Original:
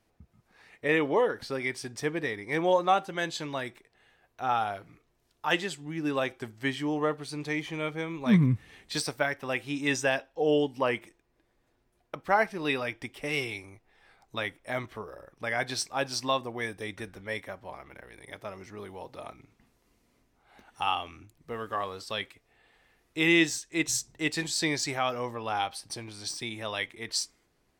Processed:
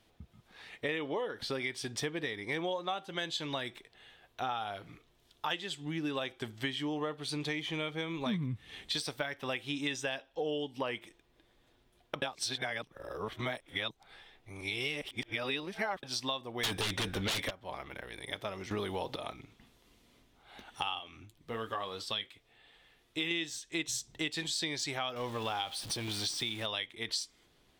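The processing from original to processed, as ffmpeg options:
ffmpeg -i in.wav -filter_complex "[0:a]asplit=3[link_01][link_02][link_03];[link_01]afade=type=out:start_time=16.63:duration=0.02[link_04];[link_02]aeval=exprs='0.112*sin(PI/2*7.94*val(0)/0.112)':channel_layout=same,afade=type=in:start_time=16.63:duration=0.02,afade=type=out:start_time=17.49:duration=0.02[link_05];[link_03]afade=type=in:start_time=17.49:duration=0.02[link_06];[link_04][link_05][link_06]amix=inputs=3:normalize=0,asettb=1/sr,asplit=3[link_07][link_08][link_09];[link_07]atrim=end=20.994[link_10];[link_08]atrim=start=20.99:end=23.31,asetpts=PTS-STARTPTS,afade=type=in:duration=0.004:curve=qsin,afade=type=out:start_time=2.316:duration=0.004:curve=qsin,flanger=delay=5.6:depth=4.9:regen=-52:speed=1.1:shape=triangular[link_11];[link_09]atrim=start=23.306[link_12];[link_10][link_11]acrossfade=duration=0.004:curve1=hsin:curve2=qsin[link_13];[link_13][link_12]acrossfade=duration=0.004:curve1=qsin:curve2=hsin,asettb=1/sr,asplit=3[link_14][link_15][link_16];[link_14]atrim=end=25.164[link_17];[link_15]atrim=start=25.16:end=26.66,asetpts=PTS-STARTPTS,afade=type=in:duration=0.004:curve=qsin,afade=type=out:start_time=1.496:duration=0.004:curve=qsin,aeval=exprs='val(0)+0.5*0.00891*sgn(val(0))':channel_layout=same[link_18];[link_16]atrim=start=26.656[link_19];[link_17][link_18]acrossfade=duration=0.004:curve1=hsin:curve2=qsin[link_20];[link_20][link_19]acrossfade=duration=0.004:curve1=qsin:curve2=hsin,asplit=5[link_21][link_22][link_23][link_24][link_25];[link_21]atrim=end=12.222[link_26];[link_22]atrim=start=12.218:end=16.032,asetpts=PTS-STARTPTS,areverse[link_27];[link_23]atrim=start=16.028:end=18.712[link_28];[link_24]atrim=start=18.708:end=19.162,asetpts=PTS-STARTPTS,volume=11dB[link_29];[link_25]atrim=start=19.158[link_30];[link_26][link_27]acrossfade=duration=0.004:curve1=hsin:curve2=hsin[link_31];[link_31][link_28]acrossfade=duration=0.004:curve1=hsin:curve2=hsin[link_32];[link_32][link_29]acrossfade=duration=0.004:curve1=hsin:curve2=hsin[link_33];[link_33][link_30]acrossfade=duration=0.004:curve1=hsin:curve2=hsin,equalizer=frequency=3400:width_type=o:width=0.55:gain=10.5,acompressor=threshold=-36dB:ratio=6,volume=3dB" out.wav

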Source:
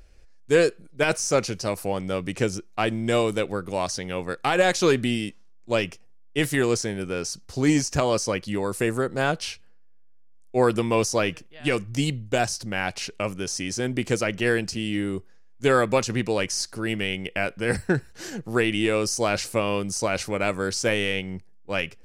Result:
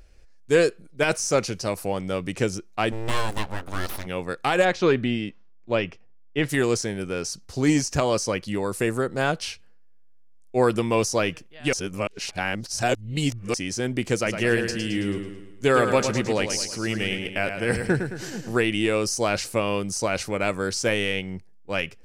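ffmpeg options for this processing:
ffmpeg -i in.wav -filter_complex "[0:a]asplit=3[link_01][link_02][link_03];[link_01]afade=type=out:start_time=2.91:duration=0.02[link_04];[link_02]aeval=exprs='abs(val(0))':channel_layout=same,afade=type=in:start_time=2.91:duration=0.02,afade=type=out:start_time=4.05:duration=0.02[link_05];[link_03]afade=type=in:start_time=4.05:duration=0.02[link_06];[link_04][link_05][link_06]amix=inputs=3:normalize=0,asplit=3[link_07][link_08][link_09];[link_07]afade=type=out:start_time=4.64:duration=0.02[link_10];[link_08]lowpass=3100,afade=type=in:start_time=4.64:duration=0.02,afade=type=out:start_time=6.48:duration=0.02[link_11];[link_09]afade=type=in:start_time=6.48:duration=0.02[link_12];[link_10][link_11][link_12]amix=inputs=3:normalize=0,asettb=1/sr,asplit=3[link_13][link_14][link_15];[link_13]atrim=end=14.154[link_16];[link_14]atrim=start=14.15:end=18.57,asetpts=PTS-STARTPTS,afade=type=in:duration=0.004:curve=qsin,afade=type=out:start_time=4.416:duration=0.004:curve=qsin,aecho=1:1:109|218|327|436|545|654:0.422|0.207|0.101|0.0496|0.0243|0.0119,atrim=end_sample=194922[link_17];[link_15]atrim=start=18.566[link_18];[link_16][link_17]acrossfade=duration=0.004:curve1=hsin:curve2=qsin[link_19];[link_19][link_18]acrossfade=duration=0.004:curve1=qsin:curve2=hsin,asplit=3[link_20][link_21][link_22];[link_20]atrim=end=11.732[link_23];[link_21]atrim=start=11.728:end=13.542,asetpts=PTS-STARTPTS,areverse[link_24];[link_22]atrim=start=13.538[link_25];[link_23][link_24]acrossfade=duration=0.004:curve1=hsin:curve2=hsin[link_26];[link_26][link_25]acrossfade=duration=0.004:curve1=hsin:curve2=hsin" out.wav

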